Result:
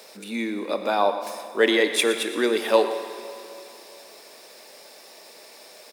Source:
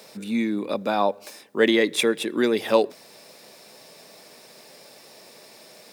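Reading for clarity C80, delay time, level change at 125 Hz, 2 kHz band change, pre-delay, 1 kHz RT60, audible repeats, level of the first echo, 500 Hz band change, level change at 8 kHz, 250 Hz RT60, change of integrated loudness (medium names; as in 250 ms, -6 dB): 8.5 dB, 118 ms, no reading, +1.5 dB, 19 ms, 2.8 s, 1, -13.5 dB, +0.5 dB, +3.0 dB, 2.9 s, 0.0 dB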